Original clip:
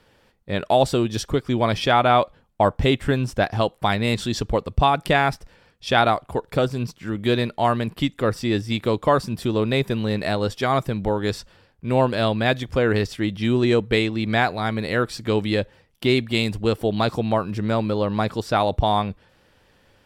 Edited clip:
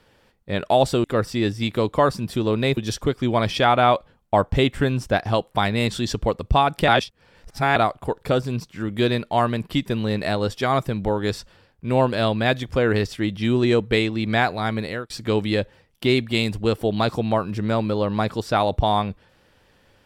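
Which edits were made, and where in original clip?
0:05.15–0:06.03: reverse
0:08.13–0:09.86: move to 0:01.04
0:14.79–0:15.10: fade out

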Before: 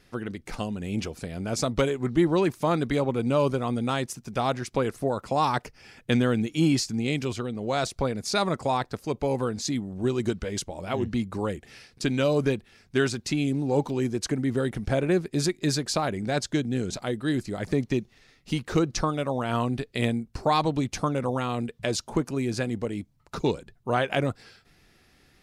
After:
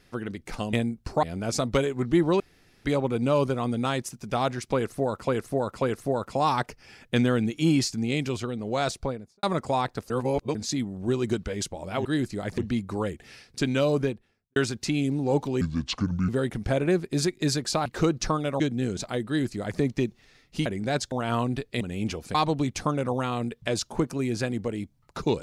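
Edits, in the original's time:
0:00.73–0:01.27: swap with 0:20.02–0:20.52
0:02.44–0:02.89: fill with room tone
0:04.78–0:05.32: repeat, 3 plays
0:07.84–0:08.39: fade out and dull
0:09.06–0:09.51: reverse
0:12.28–0:12.99: fade out and dull
0:14.04–0:14.50: play speed 68%
0:16.07–0:16.53: swap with 0:18.59–0:19.33
0:17.20–0:17.73: duplicate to 0:11.01

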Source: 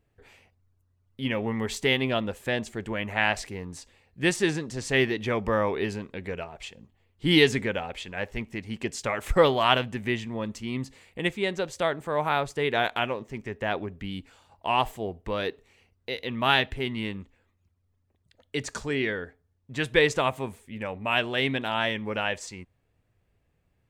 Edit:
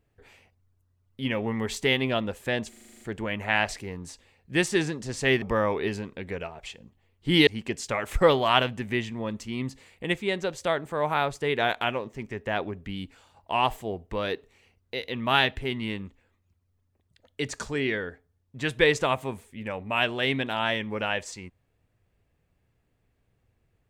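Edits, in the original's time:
0:02.69: stutter 0.04 s, 9 plays
0:05.10–0:05.39: remove
0:07.44–0:08.62: remove

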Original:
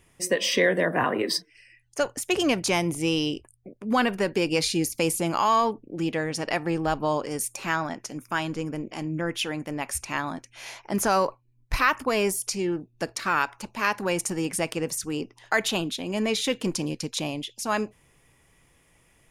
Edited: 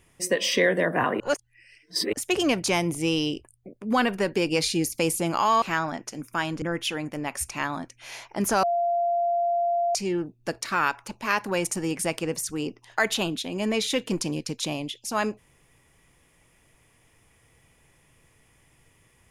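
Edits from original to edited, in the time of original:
0:01.20–0:02.13: reverse
0:05.62–0:07.59: remove
0:08.59–0:09.16: remove
0:11.17–0:12.49: beep over 691 Hz −21 dBFS

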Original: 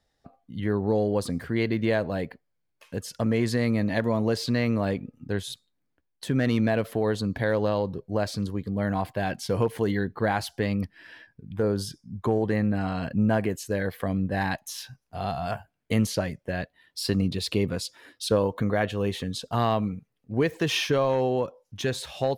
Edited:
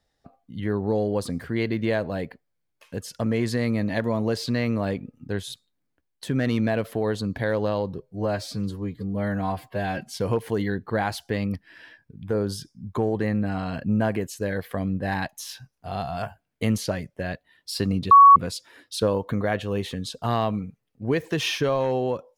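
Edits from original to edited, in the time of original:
0:08.00–0:09.42: time-stretch 1.5×
0:17.40–0:17.65: beep over 1,120 Hz −7 dBFS

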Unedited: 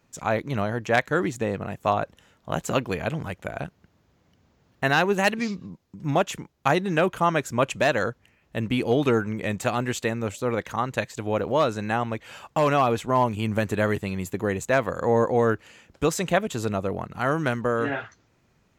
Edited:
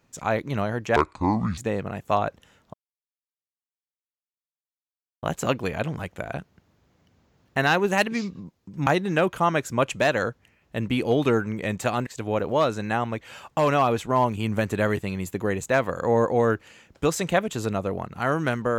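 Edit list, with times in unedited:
0:00.96–0:01.33: play speed 60%
0:02.49: splice in silence 2.49 s
0:06.13–0:06.67: remove
0:09.87–0:11.06: remove

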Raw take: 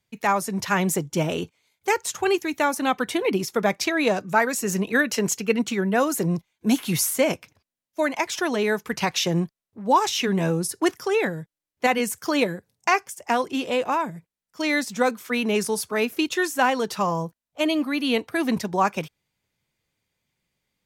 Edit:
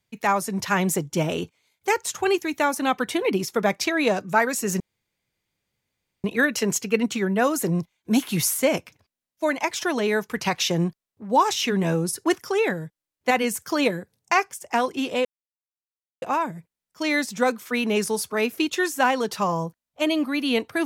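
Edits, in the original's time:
0:04.80: splice in room tone 1.44 s
0:13.81: splice in silence 0.97 s

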